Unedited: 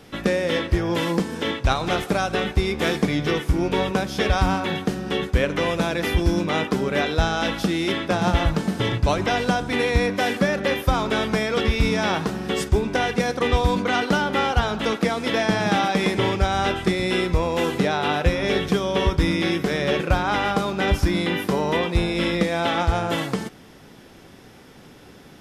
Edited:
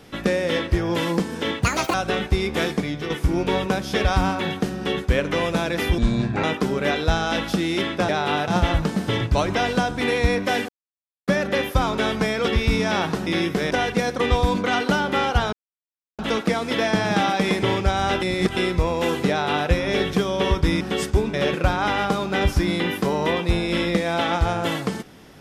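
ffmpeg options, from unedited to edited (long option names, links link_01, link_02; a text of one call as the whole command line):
ffmpeg -i in.wav -filter_complex "[0:a]asplit=16[link_01][link_02][link_03][link_04][link_05][link_06][link_07][link_08][link_09][link_10][link_11][link_12][link_13][link_14][link_15][link_16];[link_01]atrim=end=1.624[link_17];[link_02]atrim=start=1.62:end=2.19,asetpts=PTS-STARTPTS,asetrate=78498,aresample=44100[link_18];[link_03]atrim=start=2.186:end=3.35,asetpts=PTS-STARTPTS,afade=type=out:start_time=0.594:duration=0.57:silence=0.398107[link_19];[link_04]atrim=start=3.35:end=6.234,asetpts=PTS-STARTPTS,afade=type=in:duration=0.004:curve=hsin:silence=0.398107[link_20];[link_05]atrim=start=6.23:end=6.54,asetpts=PTS-STARTPTS,asetrate=29988,aresample=44100,atrim=end_sample=20104,asetpts=PTS-STARTPTS[link_21];[link_06]atrim=start=6.536:end=8.192[link_22];[link_07]atrim=start=17.848:end=18.242[link_23];[link_08]atrim=start=8.188:end=10.4,asetpts=PTS-STARTPTS,afade=type=out:start_time=2.208:duration=0.004:curve=hsin,apad=pad_dur=0.59[link_24];[link_09]atrim=start=10.4:end=12.392,asetpts=PTS-STARTPTS,afade=type=in:duration=0.004:curve=hsin[link_25];[link_10]atrim=start=19.358:end=19.802[link_26];[link_11]atrim=start=12.918:end=14.74,asetpts=PTS-STARTPTS,afade=type=out:start_time=1.818:duration=0.004:curve=hsin,apad=pad_dur=0.66[link_27];[link_12]atrim=start=14.74:end=16.772,asetpts=PTS-STARTPTS,afade=type=in:duration=0.004:curve=hsin[link_28];[link_13]atrim=start=16.768:end=17.122,asetpts=PTS-STARTPTS,areverse[link_29];[link_14]atrim=start=17.118:end=19.362[link_30];[link_15]atrim=start=12.388:end=12.922[link_31];[link_16]atrim=start=19.798[link_32];[link_17][link_18]acrossfade=duration=0.004:curve1=hsin:curve2=hsin[link_33];[link_19][link_20]concat=n=2:v=0:a=1[link_34];[link_33][link_34]acrossfade=duration=0.004:curve1=hsin:curve2=hsin[link_35];[link_35][link_21]acrossfade=duration=0.004:curve1=hsin:curve2=hsin[link_36];[link_36][link_22]acrossfade=duration=0.004:curve1=hsin:curve2=hsin[link_37];[link_37][link_23]acrossfade=duration=0.004:curve1=hsin:curve2=hsin[link_38];[link_24][link_25]concat=n=2:v=0:a=1[link_39];[link_38][link_39]acrossfade=duration=0.004:curve1=hsin:curve2=hsin[link_40];[link_40][link_26]acrossfade=duration=0.004:curve1=hsin:curve2=hsin[link_41];[link_27][link_28]concat=n=2:v=0:a=1[link_42];[link_41][link_42]acrossfade=duration=0.004:curve1=hsin:curve2=hsin[link_43];[link_43][link_29]acrossfade=duration=0.004:curve1=hsin:curve2=hsin[link_44];[link_44][link_30]acrossfade=duration=0.004:curve1=hsin:curve2=hsin[link_45];[link_45][link_31]acrossfade=duration=0.004:curve1=hsin:curve2=hsin[link_46];[link_46][link_32]acrossfade=duration=0.004:curve1=hsin:curve2=hsin" out.wav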